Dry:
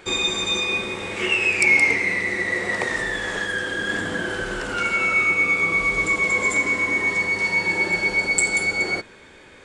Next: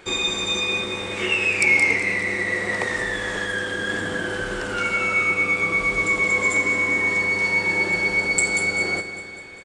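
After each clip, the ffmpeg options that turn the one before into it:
ffmpeg -i in.wav -af "aecho=1:1:200|400|600|800|1000|1200:0.251|0.146|0.0845|0.049|0.0284|0.0165,volume=-1dB" out.wav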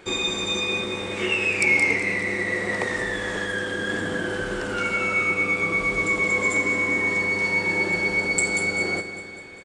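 ffmpeg -i in.wav -af "equalizer=frequency=250:width=0.46:gain=4,volume=-2.5dB" out.wav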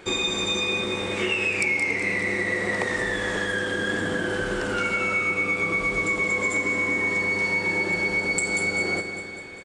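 ffmpeg -i in.wav -af "acompressor=threshold=-23dB:ratio=6,volume=2dB" out.wav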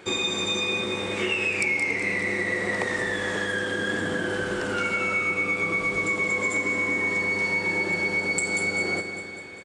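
ffmpeg -i in.wav -af "highpass=68,volume=-1dB" out.wav

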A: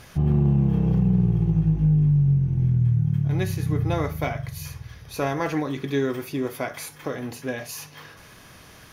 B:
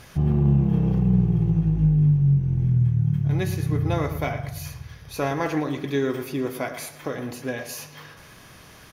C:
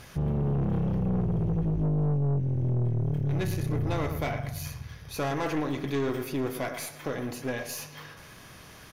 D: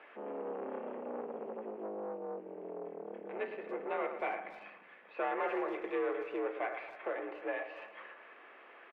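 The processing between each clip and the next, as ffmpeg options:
ffmpeg -i in.wav -filter_complex "[0:a]asplit=2[link_01][link_02];[link_02]adelay=113,lowpass=frequency=3800:poles=1,volume=-11.5dB,asplit=2[link_03][link_04];[link_04]adelay=113,lowpass=frequency=3800:poles=1,volume=0.42,asplit=2[link_05][link_06];[link_06]adelay=113,lowpass=frequency=3800:poles=1,volume=0.42,asplit=2[link_07][link_08];[link_08]adelay=113,lowpass=frequency=3800:poles=1,volume=0.42[link_09];[link_01][link_03][link_05][link_07][link_09]amix=inputs=5:normalize=0" out.wav
ffmpeg -i in.wav -af "aeval=exprs='(tanh(15.8*val(0)+0.4)-tanh(0.4))/15.8':channel_layout=same" out.wav
ffmpeg -i in.wav -filter_complex "[0:a]highpass=frequency=310:width_type=q:width=0.5412,highpass=frequency=310:width_type=q:width=1.307,lowpass=frequency=2600:width_type=q:width=0.5176,lowpass=frequency=2600:width_type=q:width=0.7071,lowpass=frequency=2600:width_type=q:width=1.932,afreqshift=57,asplit=2[link_01][link_02];[link_02]adelay=280,highpass=300,lowpass=3400,asoftclip=type=hard:threshold=-28dB,volume=-16dB[link_03];[link_01][link_03]amix=inputs=2:normalize=0,volume=-3.5dB" out.wav

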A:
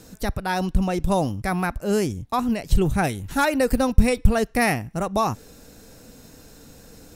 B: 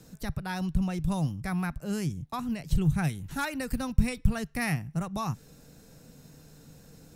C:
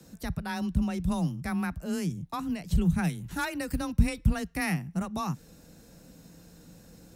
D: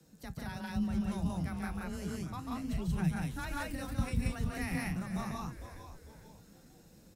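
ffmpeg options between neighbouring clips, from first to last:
ffmpeg -i in.wav -filter_complex "[0:a]equalizer=frequency=150:width=2.9:gain=12,acrossover=split=280|890|3000[link_01][link_02][link_03][link_04];[link_02]acompressor=threshold=-36dB:ratio=6[link_05];[link_01][link_05][link_03][link_04]amix=inputs=4:normalize=0,volume=-8.5dB" out.wav
ffmpeg -i in.wav -af "afreqshift=21" out.wav
ffmpeg -i in.wav -filter_complex "[0:a]asplit=2[link_01][link_02];[link_02]aecho=0:1:142.9|180.8:0.631|1[link_03];[link_01][link_03]amix=inputs=2:normalize=0,flanger=delay=6.2:depth=5.9:regen=65:speed=0.32:shape=triangular,asplit=2[link_04][link_05];[link_05]asplit=4[link_06][link_07][link_08][link_09];[link_06]adelay=452,afreqshift=-130,volume=-10.5dB[link_10];[link_07]adelay=904,afreqshift=-260,volume=-18.5dB[link_11];[link_08]adelay=1356,afreqshift=-390,volume=-26.4dB[link_12];[link_09]adelay=1808,afreqshift=-520,volume=-34.4dB[link_13];[link_10][link_11][link_12][link_13]amix=inputs=4:normalize=0[link_14];[link_04][link_14]amix=inputs=2:normalize=0,volume=-6dB" out.wav

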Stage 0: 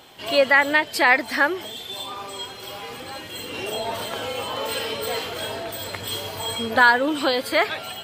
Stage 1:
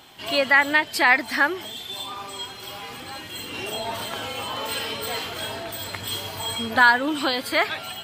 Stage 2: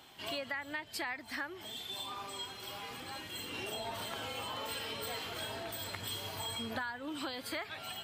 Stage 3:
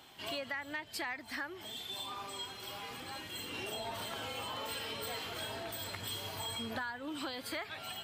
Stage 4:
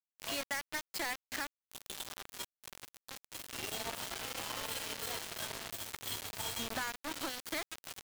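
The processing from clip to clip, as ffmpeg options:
ffmpeg -i in.wav -af "equalizer=frequency=500:width=2.2:gain=-7" out.wav
ffmpeg -i in.wav -filter_complex "[0:a]acrossover=split=120[link_01][link_02];[link_02]acompressor=threshold=-28dB:ratio=10[link_03];[link_01][link_03]amix=inputs=2:normalize=0,volume=-8dB" out.wav
ffmpeg -i in.wav -af "asoftclip=type=tanh:threshold=-26dB" out.wav
ffmpeg -i in.wav -af "acrusher=bits=5:mix=0:aa=0.000001" out.wav

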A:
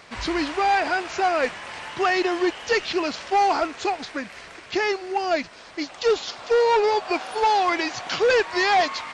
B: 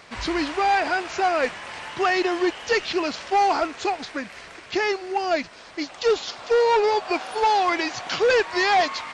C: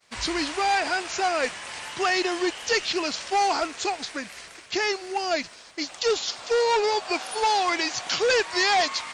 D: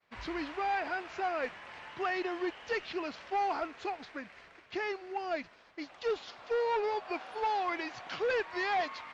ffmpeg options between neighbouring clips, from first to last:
ffmpeg -i in.wav -af anull out.wav
ffmpeg -i in.wav -af "aemphasis=mode=production:type=75fm,agate=range=-33dB:threshold=-36dB:ratio=3:detection=peak,volume=-3dB" out.wav
ffmpeg -i in.wav -af "lowpass=2300,volume=-8.5dB" out.wav

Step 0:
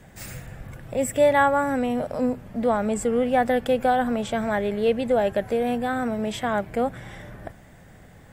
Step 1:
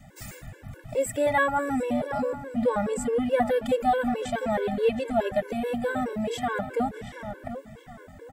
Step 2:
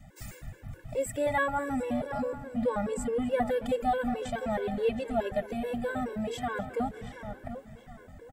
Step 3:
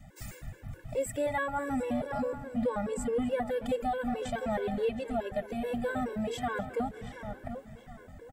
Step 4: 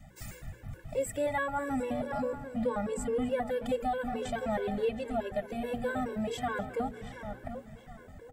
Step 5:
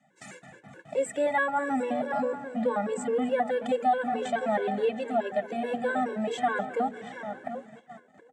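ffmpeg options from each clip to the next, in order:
ffmpeg -i in.wav -filter_complex "[0:a]asplit=2[link_01][link_02];[link_02]adelay=725,lowpass=frequency=4200:poles=1,volume=-11dB,asplit=2[link_03][link_04];[link_04]adelay=725,lowpass=frequency=4200:poles=1,volume=0.36,asplit=2[link_05][link_06];[link_06]adelay=725,lowpass=frequency=4200:poles=1,volume=0.36,asplit=2[link_07][link_08];[link_08]adelay=725,lowpass=frequency=4200:poles=1,volume=0.36[link_09];[link_03][link_05][link_07][link_09]amix=inputs=4:normalize=0[link_10];[link_01][link_10]amix=inputs=2:normalize=0,afftfilt=real='re*gt(sin(2*PI*4.7*pts/sr)*(1-2*mod(floor(b*sr/1024/290),2)),0)':imag='im*gt(sin(2*PI*4.7*pts/sr)*(1-2*mod(floor(b*sr/1024/290),2)),0)':win_size=1024:overlap=0.75" out.wav
ffmpeg -i in.wav -af "lowshelf=frequency=83:gain=9.5,aecho=1:1:259|518|777|1036:0.0891|0.0455|0.0232|0.0118,volume=-5dB" out.wav
ffmpeg -i in.wav -af "alimiter=limit=-22dB:level=0:latency=1:release=343" out.wav
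ffmpeg -i in.wav -af "bandreject=frequency=60:width_type=h:width=6,bandreject=frequency=120:width_type=h:width=6,bandreject=frequency=180:width_type=h:width=6,bandreject=frequency=240:width_type=h:width=6,bandreject=frequency=300:width_type=h:width=6,bandreject=frequency=360:width_type=h:width=6,bandreject=frequency=420:width_type=h:width=6,bandreject=frequency=480:width_type=h:width=6" out.wav
ffmpeg -i in.wav -af "agate=range=-12dB:threshold=-47dB:ratio=16:detection=peak,highpass=frequency=190:width=0.5412,highpass=frequency=190:width=1.3066,equalizer=frequency=750:width_type=q:width=4:gain=5,equalizer=frequency=1700:width_type=q:width=4:gain=4,equalizer=frequency=5000:width_type=q:width=4:gain=-7,lowpass=frequency=8200:width=0.5412,lowpass=frequency=8200:width=1.3066,volume=3.5dB" out.wav

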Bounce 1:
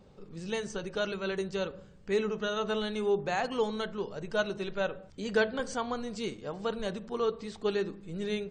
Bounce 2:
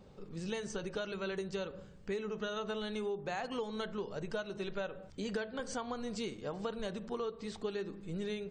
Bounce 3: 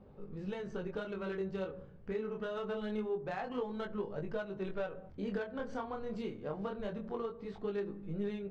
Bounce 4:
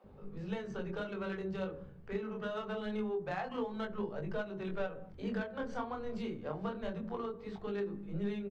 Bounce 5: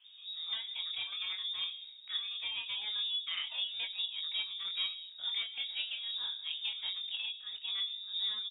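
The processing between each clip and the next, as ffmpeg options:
ffmpeg -i in.wav -af "acompressor=threshold=-34dB:ratio=12" out.wav
ffmpeg -i in.wav -af "flanger=delay=19.5:depth=7.7:speed=0.25,adynamicsmooth=sensitivity=3.5:basefreq=1800,volume=3.5dB" out.wav
ffmpeg -i in.wav -filter_complex "[0:a]acrossover=split=410[link_01][link_02];[link_01]adelay=40[link_03];[link_03][link_02]amix=inputs=2:normalize=0,volume=2dB" out.wav
ffmpeg -i in.wav -af "lowpass=frequency=3200:width_type=q:width=0.5098,lowpass=frequency=3200:width_type=q:width=0.6013,lowpass=frequency=3200:width_type=q:width=0.9,lowpass=frequency=3200:width_type=q:width=2.563,afreqshift=-3800" out.wav

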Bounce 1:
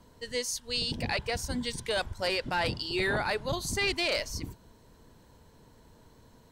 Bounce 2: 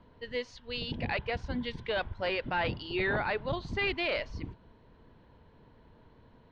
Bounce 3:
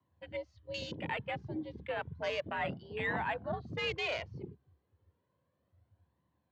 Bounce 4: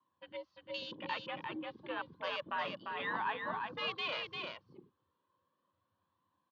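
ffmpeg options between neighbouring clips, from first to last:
ffmpeg -i in.wav -af "lowpass=frequency=3300:width=0.5412,lowpass=frequency=3300:width=1.3066,volume=-1dB" out.wav
ffmpeg -i in.wav -af "afwtdn=0.0112,afreqshift=68,flanger=delay=1:depth=1.6:regen=41:speed=0.32:shape=triangular" out.wav
ffmpeg -i in.wav -af "highpass=290,equalizer=frequency=430:width_type=q:width=4:gain=-7,equalizer=frequency=690:width_type=q:width=4:gain=-10,equalizer=frequency=1100:width_type=q:width=4:gain=10,equalizer=frequency=2100:width_type=q:width=4:gain=-7,equalizer=frequency=3400:width_type=q:width=4:gain=4,lowpass=frequency=4800:width=0.5412,lowpass=frequency=4800:width=1.3066,aecho=1:1:347:0.596,volume=-1dB" out.wav

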